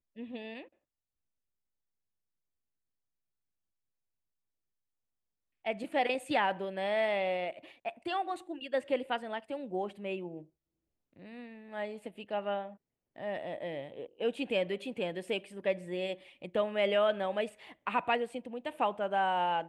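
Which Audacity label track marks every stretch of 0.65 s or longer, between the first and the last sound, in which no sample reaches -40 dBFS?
0.620000	5.660000	silence
10.390000	11.330000	silence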